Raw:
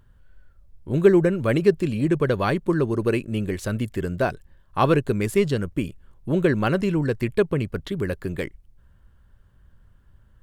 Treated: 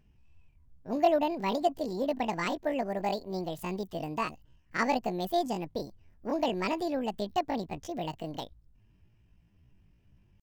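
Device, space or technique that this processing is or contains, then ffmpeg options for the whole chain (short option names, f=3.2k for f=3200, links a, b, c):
chipmunk voice: -af "asetrate=76340,aresample=44100,atempo=0.577676,volume=-9dB"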